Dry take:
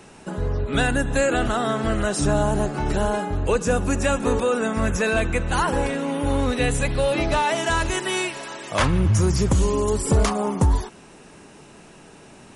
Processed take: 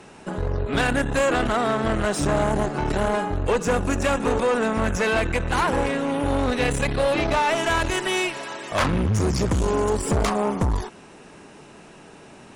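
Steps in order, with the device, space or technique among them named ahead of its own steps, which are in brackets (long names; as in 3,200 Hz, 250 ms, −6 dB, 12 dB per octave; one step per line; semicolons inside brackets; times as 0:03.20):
tube preamp driven hard (tube saturation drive 20 dB, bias 0.65; low-shelf EQ 200 Hz −4 dB; high-shelf EQ 5,400 Hz −7 dB)
level +5.5 dB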